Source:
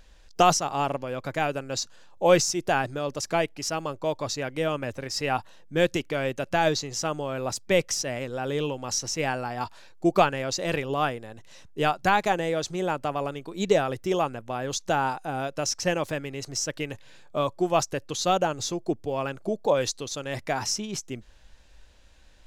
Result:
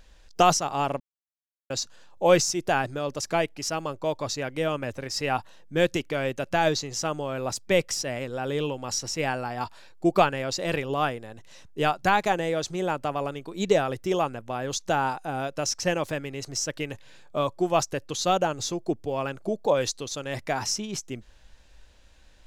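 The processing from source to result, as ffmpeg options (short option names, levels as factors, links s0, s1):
-filter_complex "[0:a]asettb=1/sr,asplit=3[s0][s1][s2];[s0]atrim=end=7.794[s3];[s1]atrim=start=7.79:end=10.8,asetpts=PTS-STARTPTS,afade=t=in:d=0.004:c=qsin,afade=t=out:st=3.006:d=0.004:c=qsin,bandreject=f=6200:w=11[s4];[s2]atrim=start=10.796[s5];[s3][s4]acrossfade=d=0.004:c1=hsin:c2=qsin[s6];[s6][s5]acrossfade=d=0.004:c1=qsin:c2=hsin,asplit=3[s7][s8][s9];[s7]atrim=end=1,asetpts=PTS-STARTPTS,afade=t=out:st=0.996:d=0.004:c=hsin[s10];[s8]atrim=start=1:end=1.7,asetpts=PTS-STARTPTS,volume=0[s11];[s9]atrim=start=1.7,asetpts=PTS-STARTPTS,afade=t=in:d=0.004:c=hsin[s12];[s10][s11][s12]concat=n=3:v=0:a=1"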